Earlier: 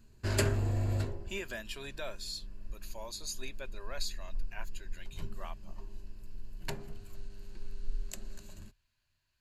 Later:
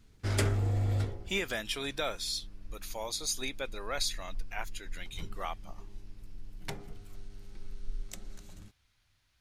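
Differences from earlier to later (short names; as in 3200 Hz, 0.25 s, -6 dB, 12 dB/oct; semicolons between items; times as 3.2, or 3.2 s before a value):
speech +8.0 dB; master: remove ripple EQ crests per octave 1.4, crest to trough 8 dB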